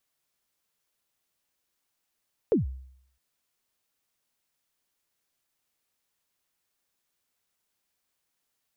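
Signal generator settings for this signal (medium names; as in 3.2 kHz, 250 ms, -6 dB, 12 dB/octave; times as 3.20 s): kick drum length 0.66 s, from 510 Hz, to 65 Hz, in 137 ms, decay 0.68 s, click off, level -16.5 dB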